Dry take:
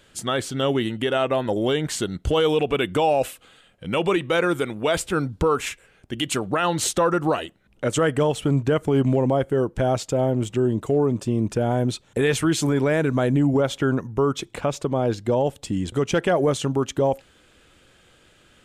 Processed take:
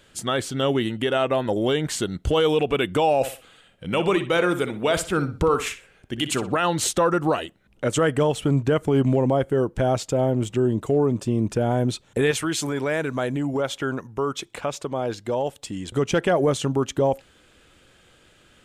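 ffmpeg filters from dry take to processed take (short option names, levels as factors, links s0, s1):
-filter_complex "[0:a]asettb=1/sr,asplit=3[s0][s1][s2];[s0]atrim=end=3.154[s3];[s1]atrim=start=3.15:end=6.57,asetpts=PTS-STARTPTS,afade=t=in:d=0.004:c=qsin,afade=t=out:st=3.416:d=0.004:c=qsin,asplit=2[s4][s5];[s5]adelay=61,lowpass=f=4900:p=1,volume=0.282,asplit=2[s6][s7];[s7]adelay=61,lowpass=f=4900:p=1,volume=0.3,asplit=2[s8][s9];[s9]adelay=61,lowpass=f=4900:p=1,volume=0.3[s10];[s4][s6][s8][s10]amix=inputs=4:normalize=0,atrim=end_sample=150822[s11];[s2]atrim=start=6.566[s12];[s3][s11]acrossfade=d=0.004:c1=hsin:c2=qsin[s13];[s13][s12]acrossfade=d=0.004:c1=qsin:c2=hsin,asettb=1/sr,asplit=3[s14][s15][s16];[s14]atrim=end=12.314[s17];[s15]atrim=start=12.31:end=15.91,asetpts=PTS-STARTPTS,afade=t=in:d=0.004:c=qsin,afade=t=out:st=3.596:d=0.004:c=qsin,lowshelf=f=420:g=-9[s18];[s16]atrim=start=15.906[s19];[s17][s18]acrossfade=d=0.004:c1=hsin:c2=qsin[s20];[s20][s19]acrossfade=d=0.004:c1=qsin:c2=hsin"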